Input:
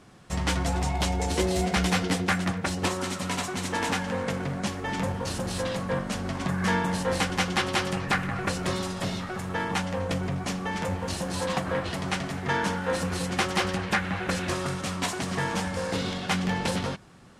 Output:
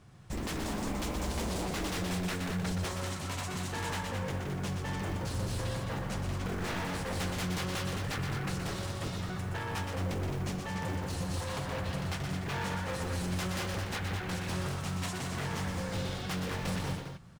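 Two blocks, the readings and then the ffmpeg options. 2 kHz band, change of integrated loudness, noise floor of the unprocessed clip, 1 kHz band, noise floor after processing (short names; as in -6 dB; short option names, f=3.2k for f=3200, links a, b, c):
-9.0 dB, -7.0 dB, -35 dBFS, -9.0 dB, -39 dBFS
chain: -filter_complex "[0:a]lowshelf=f=180:t=q:w=1.5:g=8,acrusher=bits=8:mode=log:mix=0:aa=0.000001,aeval=exprs='0.075*(abs(mod(val(0)/0.075+3,4)-2)-1)':c=same,asplit=2[a][b];[b]aecho=0:1:122.4|215.7:0.501|0.447[c];[a][c]amix=inputs=2:normalize=0,volume=-8dB"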